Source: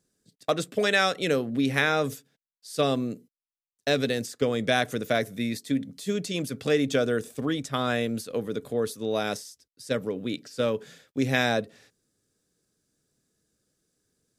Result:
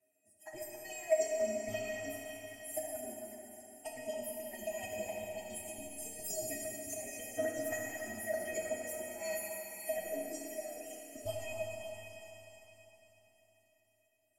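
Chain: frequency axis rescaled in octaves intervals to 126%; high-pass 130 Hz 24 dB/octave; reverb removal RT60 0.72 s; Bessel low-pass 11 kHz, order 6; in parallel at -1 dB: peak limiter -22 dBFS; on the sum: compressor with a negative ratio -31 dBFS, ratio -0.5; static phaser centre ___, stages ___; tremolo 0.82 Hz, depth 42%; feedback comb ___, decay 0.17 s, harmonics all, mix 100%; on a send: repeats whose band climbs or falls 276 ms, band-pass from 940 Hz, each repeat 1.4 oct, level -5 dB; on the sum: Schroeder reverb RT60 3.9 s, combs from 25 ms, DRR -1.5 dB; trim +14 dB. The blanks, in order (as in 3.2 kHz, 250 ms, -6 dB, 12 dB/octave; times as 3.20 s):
790 Hz, 8, 630 Hz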